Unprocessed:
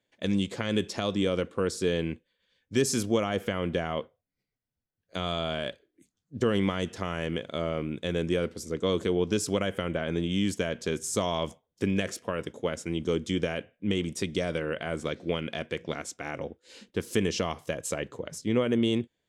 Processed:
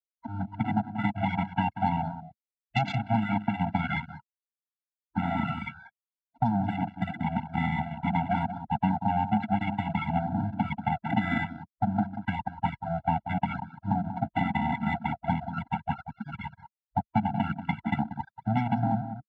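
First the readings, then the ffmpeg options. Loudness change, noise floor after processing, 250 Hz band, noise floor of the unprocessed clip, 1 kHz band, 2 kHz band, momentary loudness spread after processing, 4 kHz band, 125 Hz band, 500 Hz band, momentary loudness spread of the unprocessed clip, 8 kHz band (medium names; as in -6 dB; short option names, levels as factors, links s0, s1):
0.0 dB, under -85 dBFS, +0.5 dB, -84 dBFS, +10.0 dB, +0.5 dB, 8 LU, -10.5 dB, +4.0 dB, -11.0 dB, 9 LU, under -30 dB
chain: -filter_complex "[0:a]acrossover=split=260[s0][s1];[s1]dynaudnorm=f=120:g=5:m=5.01[s2];[s0][s2]amix=inputs=2:normalize=0,acrusher=samples=15:mix=1:aa=0.000001:lfo=1:lforange=15:lforate=0.29,afftfilt=real='re*gte(hypot(re,im),0.316)':imag='im*gte(hypot(re,im),0.316)':win_size=1024:overlap=0.75,aeval=exprs='abs(val(0))':c=same,highpass=f=120:w=0.5412,highpass=f=120:w=1.3066,equalizer=f=210:t=q:w=4:g=9,equalizer=f=350:t=q:w=4:g=-7,equalizer=f=490:t=q:w=4:g=-9,equalizer=f=1000:t=q:w=4:g=-5,equalizer=f=1500:t=q:w=4:g=-7,lowpass=f=4800:w=0.5412,lowpass=f=4800:w=1.3066,acompressor=threshold=0.0562:ratio=6,asplit=2[s3][s4];[s4]adelay=186.6,volume=0.316,highshelf=f=4000:g=-4.2[s5];[s3][s5]amix=inputs=2:normalize=0,afwtdn=0.0112,afftfilt=real='re*eq(mod(floor(b*sr/1024/330),2),0)':imag='im*eq(mod(floor(b*sr/1024/330),2),0)':win_size=1024:overlap=0.75,volume=1.5"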